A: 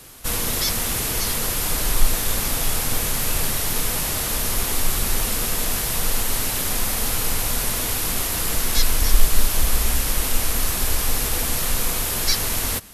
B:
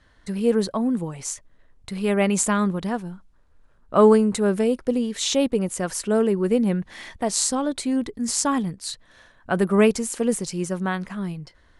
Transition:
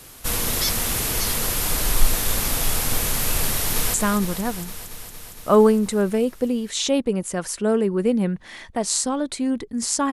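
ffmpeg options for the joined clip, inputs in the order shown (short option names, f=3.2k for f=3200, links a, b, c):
-filter_complex "[0:a]apad=whole_dur=10.12,atrim=end=10.12,atrim=end=3.942[a];[1:a]atrim=start=2.398:end=8.58[b];[a][b]acrossfade=d=0.004:c1=hsin:c2=hsin,asplit=2[c][d];[d]afade=t=in:st=3.52:d=0.01,afade=t=out:st=3.94:d=0.01,aecho=0:1:230|460|690|920|1150|1380|1610|1840|2070|2300|2530|2760:0.375837|0.30067|0.240536|0.192429|0.153943|0.123154|0.0985235|0.0788188|0.0630551|0.050444|0.0403552|0.0322842[e];[c][e]amix=inputs=2:normalize=0"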